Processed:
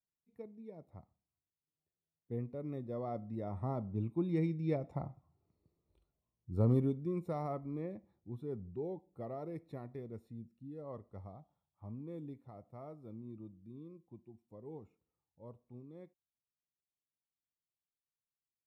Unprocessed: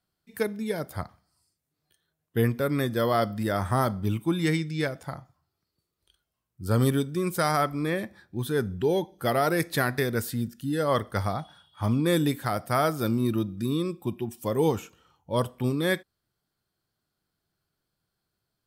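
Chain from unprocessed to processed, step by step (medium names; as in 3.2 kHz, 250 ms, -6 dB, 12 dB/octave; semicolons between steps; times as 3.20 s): Doppler pass-by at 5.59 s, 8 m/s, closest 2.3 m; boxcar filter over 28 samples; trim +6 dB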